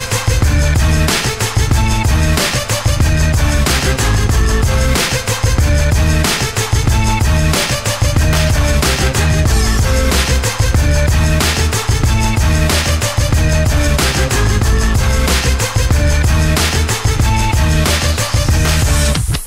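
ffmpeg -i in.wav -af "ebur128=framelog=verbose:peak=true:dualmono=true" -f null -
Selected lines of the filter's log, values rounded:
Integrated loudness:
  I:         -10.4 LUFS
  Threshold: -20.4 LUFS
Loudness range:
  LRA:         0.5 LU
  Threshold: -30.4 LUFS
  LRA low:   -10.6 LUFS
  LRA high:  -10.1 LUFS
True peak:
  Peak:       -1.7 dBFS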